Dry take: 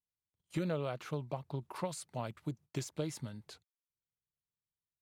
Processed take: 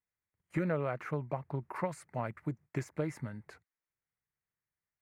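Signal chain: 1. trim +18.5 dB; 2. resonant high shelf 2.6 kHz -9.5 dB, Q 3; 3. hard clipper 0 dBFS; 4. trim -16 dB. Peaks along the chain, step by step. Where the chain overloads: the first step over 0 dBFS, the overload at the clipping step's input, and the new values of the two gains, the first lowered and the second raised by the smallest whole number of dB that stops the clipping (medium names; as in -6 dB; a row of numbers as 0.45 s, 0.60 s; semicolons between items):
-5.5 dBFS, -3.5 dBFS, -3.5 dBFS, -19.5 dBFS; nothing clips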